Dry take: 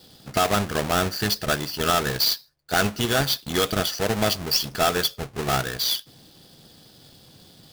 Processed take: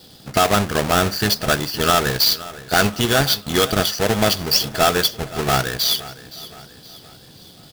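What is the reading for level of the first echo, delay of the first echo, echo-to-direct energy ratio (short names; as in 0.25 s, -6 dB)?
-17.5 dB, 0.519 s, -16.5 dB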